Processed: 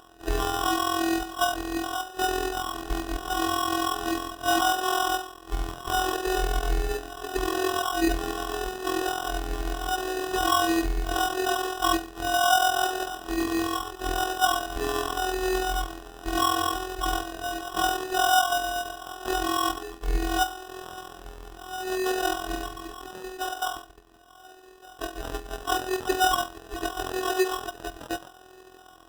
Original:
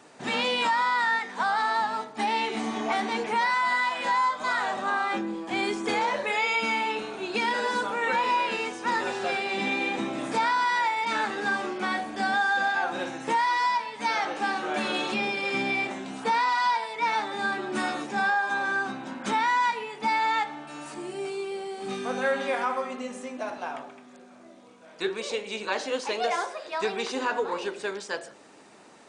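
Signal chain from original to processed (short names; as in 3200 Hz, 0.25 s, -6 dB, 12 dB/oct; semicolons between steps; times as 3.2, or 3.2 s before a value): LFO high-pass sine 0.76 Hz 390–2200 Hz; robotiser 375 Hz; sample-rate reducer 2200 Hz, jitter 0%; gain +1.5 dB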